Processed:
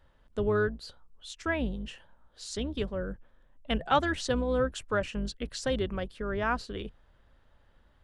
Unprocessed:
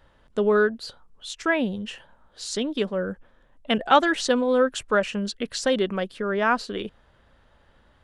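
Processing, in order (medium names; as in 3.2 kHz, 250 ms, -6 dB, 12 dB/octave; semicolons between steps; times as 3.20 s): octave divider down 2 oct, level -4 dB; bass shelf 75 Hz +7 dB; trim -8 dB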